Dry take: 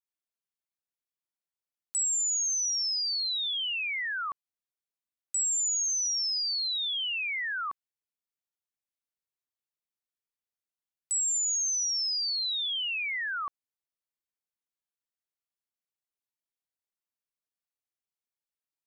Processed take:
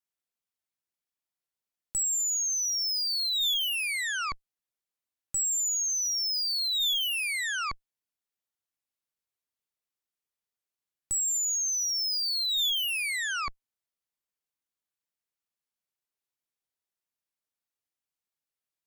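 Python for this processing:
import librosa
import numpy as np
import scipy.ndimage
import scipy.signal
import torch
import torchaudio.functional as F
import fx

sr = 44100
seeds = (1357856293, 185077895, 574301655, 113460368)

y = fx.dynamic_eq(x, sr, hz=3500.0, q=4.3, threshold_db=-46.0, ratio=4.0, max_db=5)
y = fx.cheby_harmonics(y, sr, harmonics=(2, 4, 5, 8), levels_db=(-29, -18, -32, -11), full_scale_db=-24.0)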